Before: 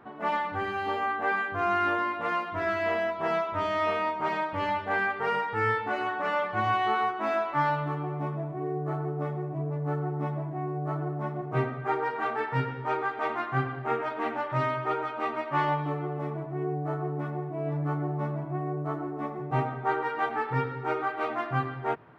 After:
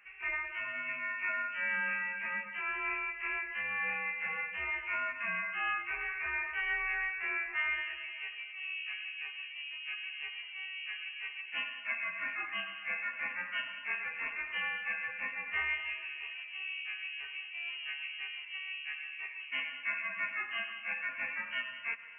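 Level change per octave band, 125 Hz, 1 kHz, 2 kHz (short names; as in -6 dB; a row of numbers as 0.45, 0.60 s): under -30 dB, -16.0 dB, +0.5 dB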